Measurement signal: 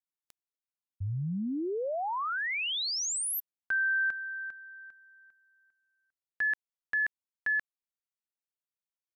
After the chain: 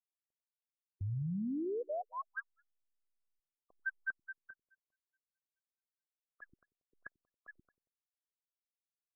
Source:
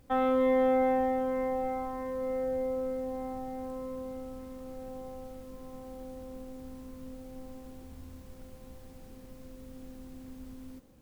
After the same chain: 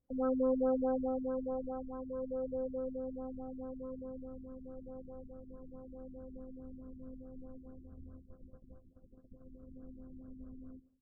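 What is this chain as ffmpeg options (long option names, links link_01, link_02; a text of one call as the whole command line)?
ffmpeg -i in.wav -filter_complex "[0:a]aeval=exprs='0.133*(cos(1*acos(clip(val(0)/0.133,-1,1)))-cos(1*PI/2))+0.0015*(cos(2*acos(clip(val(0)/0.133,-1,1)))-cos(2*PI/2))':channel_layout=same,agate=range=-21dB:threshold=-46dB:ratio=16:release=324:detection=peak,asuperstop=centerf=880:order=4:qfactor=3.3,asplit=2[link_01][link_02];[link_02]adelay=92,lowpass=frequency=2000:poles=1,volume=-18dB,asplit=2[link_03][link_04];[link_04]adelay=92,lowpass=frequency=2000:poles=1,volume=0.4,asplit=2[link_05][link_06];[link_06]adelay=92,lowpass=frequency=2000:poles=1,volume=0.4[link_07];[link_01][link_03][link_05][link_07]amix=inputs=4:normalize=0,afftfilt=real='re*lt(b*sr/1024,360*pow(1700/360,0.5+0.5*sin(2*PI*4.7*pts/sr)))':imag='im*lt(b*sr/1024,360*pow(1700/360,0.5+0.5*sin(2*PI*4.7*pts/sr)))':win_size=1024:overlap=0.75,volume=-4dB" out.wav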